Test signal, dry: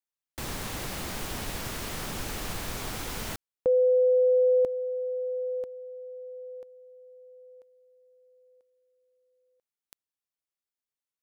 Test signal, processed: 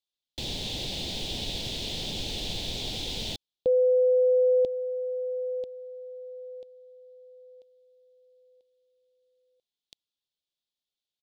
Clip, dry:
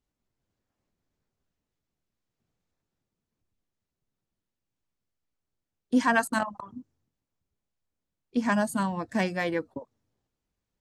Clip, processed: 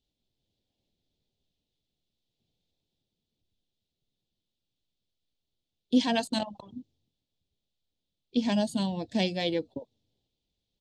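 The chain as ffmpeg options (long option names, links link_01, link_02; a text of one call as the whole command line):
ffmpeg -i in.wav -af "firequalizer=gain_entry='entry(530,0);entry(830,-4);entry(1200,-21);entry(2400,-1);entry(3500,13);entry(5600,1);entry(11000,-12)':delay=0.05:min_phase=1" out.wav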